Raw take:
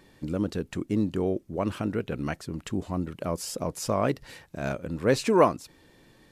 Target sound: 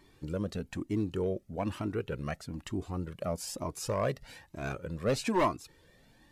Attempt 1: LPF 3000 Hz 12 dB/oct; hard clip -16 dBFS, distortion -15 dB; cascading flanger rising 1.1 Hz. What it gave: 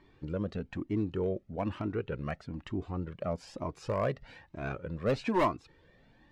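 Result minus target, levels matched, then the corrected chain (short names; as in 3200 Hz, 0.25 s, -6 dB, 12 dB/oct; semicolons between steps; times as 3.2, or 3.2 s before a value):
4000 Hz band -5.0 dB
hard clip -16 dBFS, distortion -15 dB; cascading flanger rising 1.1 Hz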